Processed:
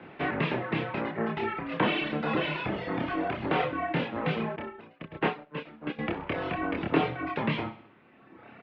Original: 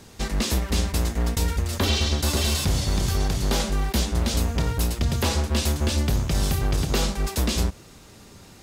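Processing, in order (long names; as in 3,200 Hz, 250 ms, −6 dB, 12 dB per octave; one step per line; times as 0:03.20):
reverb reduction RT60 1.9 s
multi-voice chorus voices 2, 0.29 Hz, delay 28 ms, depth 2.6 ms
in parallel at +2 dB: brickwall limiter −22.5 dBFS, peak gain reduction 8 dB
on the sum: single-sideband voice off tune −72 Hz 260–2,700 Hz
on a send: repeating echo 64 ms, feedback 51%, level −15 dB
0:04.56–0:05.99: on the sum: expander for the loud parts 2.5 to 1, over −39 dBFS
level +2 dB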